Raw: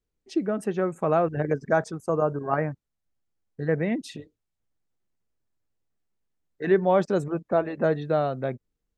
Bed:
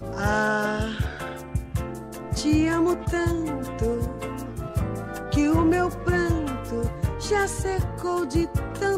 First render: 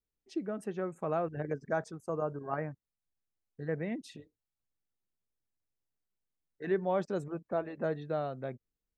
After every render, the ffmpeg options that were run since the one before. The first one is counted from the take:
-af "volume=-10dB"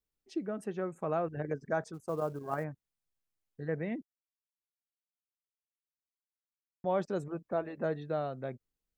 -filter_complex "[0:a]asplit=3[a][b][c];[a]afade=t=out:st=1.93:d=0.02[d];[b]acrusher=bits=7:mode=log:mix=0:aa=0.000001,afade=t=in:st=1.93:d=0.02,afade=t=out:st=2.63:d=0.02[e];[c]afade=t=in:st=2.63:d=0.02[f];[d][e][f]amix=inputs=3:normalize=0,asplit=3[g][h][i];[g]atrim=end=4.03,asetpts=PTS-STARTPTS,afade=t=out:st=4.026:d=0.004:c=hsin[j];[h]atrim=start=4.03:end=6.84,asetpts=PTS-STARTPTS,volume=0[k];[i]atrim=start=6.84,asetpts=PTS-STARTPTS,afade=t=in:d=0.004:c=hsin[l];[j][k][l]concat=n=3:v=0:a=1"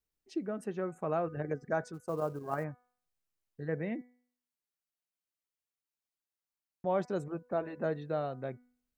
-af "bandreject=f=3.4k:w=19,bandreject=f=246.7:t=h:w=4,bandreject=f=493.4:t=h:w=4,bandreject=f=740.1:t=h:w=4,bandreject=f=986.8:t=h:w=4,bandreject=f=1.2335k:t=h:w=4,bandreject=f=1.4802k:t=h:w=4,bandreject=f=1.7269k:t=h:w=4,bandreject=f=1.9736k:t=h:w=4,bandreject=f=2.2203k:t=h:w=4"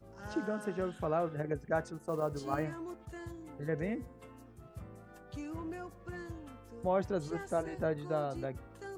-filter_complex "[1:a]volume=-21.5dB[a];[0:a][a]amix=inputs=2:normalize=0"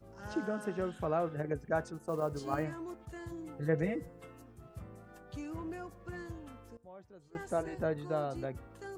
-filter_complex "[0:a]asettb=1/sr,asplit=3[a][b][c];[a]atrim=end=1.664[d];[b]atrim=start=1.66:end=2.15,asetpts=PTS-STARTPTS,afade=t=in:d=0.004:c=qsin,afade=t=out:st=0.486:d=0.004:c=qsin,bandreject=f=2k:w=12[e];[c]atrim=start=2.146[f];[d][e]acrossfade=d=0.004:c1=hsin:c2=qsin[g];[g][f]acrossfade=d=0.004:c1=qsin:c2=hsin,asettb=1/sr,asplit=3[h][i][j];[h]atrim=end=3.314[k];[i]atrim=start=3.31:end=4.42,asetpts=PTS-STARTPTS,afade=t=in:d=0.004:c=qsin,afade=t=out:st=1.106:d=0.004:c=qsin,aecho=1:1:6.1:0.77,atrim=end_sample=48951[l];[j]atrim=start=4.416[m];[k][l]acrossfade=d=0.004:c1=hsin:c2=qsin[n];[n][m]acrossfade=d=0.004:c1=qsin:c2=hsin,asplit=3[o][p][q];[o]atrim=end=6.77,asetpts=PTS-STARTPTS,afade=t=out:st=6.64:d=0.13:c=log:silence=0.0841395[r];[p]atrim=start=6.77:end=7.35,asetpts=PTS-STARTPTS,volume=-21.5dB[s];[q]atrim=start=7.35,asetpts=PTS-STARTPTS,afade=t=in:d=0.13:c=log:silence=0.0841395[t];[r][s][t]concat=n=3:v=0:a=1"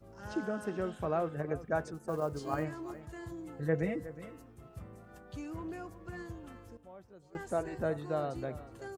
-af "aecho=1:1:365:0.168"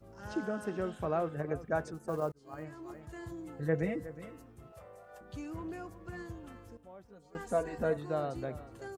-filter_complex "[0:a]asettb=1/sr,asplit=3[a][b][c];[a]atrim=end=4.724[d];[b]atrim=start=4.72:end=5.21,asetpts=PTS-STARTPTS,afade=t=in:d=0.004:c=qsin,afade=t=out:st=0.486:d=0.004:c=qsin,lowshelf=f=390:t=q:w=3:g=-11.5[e];[c]atrim=start=5.206[f];[d][e]acrossfade=d=0.004:c1=hsin:c2=qsin[g];[g][f]acrossfade=d=0.004:c1=qsin:c2=hsin,asettb=1/sr,asplit=3[h][i][j];[h]atrim=end=7.054[k];[i]atrim=start=7.05:end=7.97,asetpts=PTS-STARTPTS,afade=t=in:d=0.004:c=qsin,afade=t=out:st=0.916:d=0.004:c=qsin,aecho=1:1:4.2:0.72,atrim=end_sample=40572[l];[j]atrim=start=7.966[m];[k][l]acrossfade=d=0.004:c1=hsin:c2=qsin[n];[n][m]acrossfade=d=0.004:c1=qsin:c2=hsin,asplit=2[o][p];[o]atrim=end=2.32,asetpts=PTS-STARTPTS,afade=t=out:st=2.316:d=0.004:c=hsin[q];[p]atrim=start=2.32,asetpts=PTS-STARTPTS,afade=t=in:d=0.84[r];[q][r]concat=n=2:v=0:a=1"

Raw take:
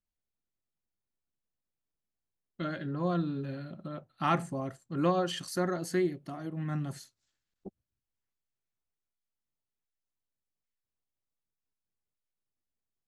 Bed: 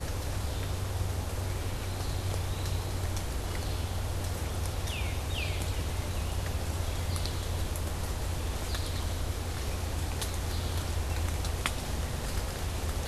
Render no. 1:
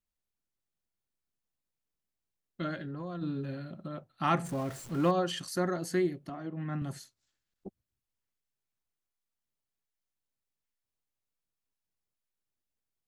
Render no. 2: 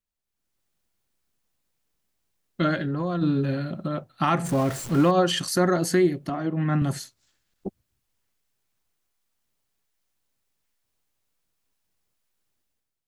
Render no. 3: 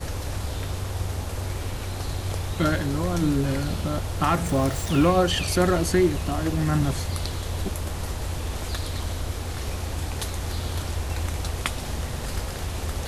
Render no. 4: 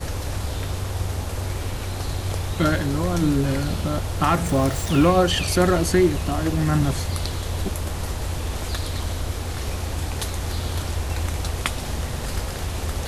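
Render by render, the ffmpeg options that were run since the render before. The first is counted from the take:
-filter_complex "[0:a]asplit=3[a][b][c];[a]afade=t=out:st=2.75:d=0.02[d];[b]acompressor=threshold=-36dB:ratio=5:attack=3.2:release=140:knee=1:detection=peak,afade=t=in:st=2.75:d=0.02,afade=t=out:st=3.21:d=0.02[e];[c]afade=t=in:st=3.21:d=0.02[f];[d][e][f]amix=inputs=3:normalize=0,asettb=1/sr,asplit=3[g][h][i];[g]atrim=end=4.444[j];[h]atrim=start=4.44:end=5.11,asetpts=PTS-STARTPTS,afade=t=in:d=0.004:c=qsin,afade=t=out:st=0.666:d=0.004:c=qsin,aeval=exprs='val(0)+0.5*0.00891*sgn(val(0))':c=same[k];[i]atrim=start=5.106[l];[j][k]acrossfade=d=0.004:c1=hsin:c2=qsin[m];[m][l]acrossfade=d=0.004:c1=qsin:c2=hsin,asettb=1/sr,asplit=3[n][o][p];[n]atrim=end=6.294[q];[o]atrim=start=6.29:end=6.82,asetpts=PTS-STARTPTS,afade=t=in:d=0.004:c=qsin,afade=t=out:st=0.526:d=0.004:c=qsin,highpass=140,lowpass=3.4k[r];[p]atrim=start=6.816[s];[q][r]acrossfade=d=0.004:c1=hsin:c2=qsin[t];[t][s]acrossfade=d=0.004:c1=qsin:c2=hsin"
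-af "dynaudnorm=f=120:g=7:m=12dB,alimiter=limit=-11dB:level=0:latency=1:release=156"
-filter_complex "[1:a]volume=3.5dB[a];[0:a][a]amix=inputs=2:normalize=0"
-af "volume=2.5dB"

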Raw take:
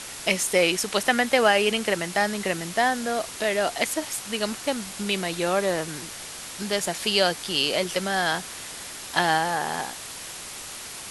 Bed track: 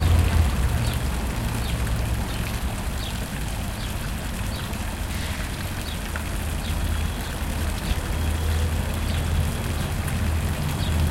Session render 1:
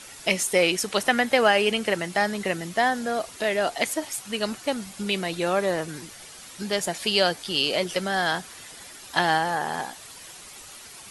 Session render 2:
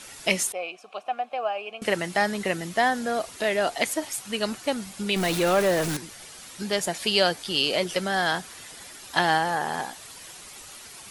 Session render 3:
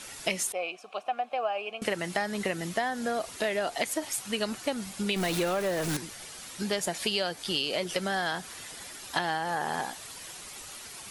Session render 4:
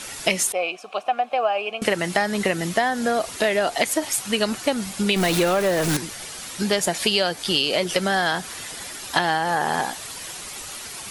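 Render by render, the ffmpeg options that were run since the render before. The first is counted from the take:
-af "afftdn=nr=9:nf=-38"
-filter_complex "[0:a]asettb=1/sr,asplit=3[a][b][c];[a]atrim=end=0.524[d];[b]atrim=start=0.52:end=1.82,asetpts=PTS-STARTPTS,afade=t=in:d=0.004:c=qsin,afade=t=out:st=1.296:d=0.004:c=qsin,asplit=3[e][f][g];[e]bandpass=f=730:t=q:w=8,volume=0dB[h];[f]bandpass=f=1.09k:t=q:w=8,volume=-6dB[i];[g]bandpass=f=2.44k:t=q:w=8,volume=-9dB[j];[h][i][j]amix=inputs=3:normalize=0[k];[c]atrim=start=1.816[l];[d][k]acrossfade=d=0.004:c1=hsin:c2=qsin[m];[m][l]acrossfade=d=0.004:c1=qsin:c2=hsin,asettb=1/sr,asplit=3[n][o][p];[n]atrim=end=5.164[q];[o]atrim=start=5.16:end=5.97,asetpts=PTS-STARTPTS,afade=t=in:d=0.004:c=qsin,afade=t=out:st=0.806:d=0.004:c=qsin,aeval=exprs='val(0)+0.5*0.0562*sgn(val(0))':c=same[r];[p]atrim=start=5.966[s];[q][r]acrossfade=d=0.004:c1=hsin:c2=qsin[t];[t][s]acrossfade=d=0.004:c1=qsin:c2=hsin"
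-af "acompressor=threshold=-25dB:ratio=10"
-af "volume=8.5dB"

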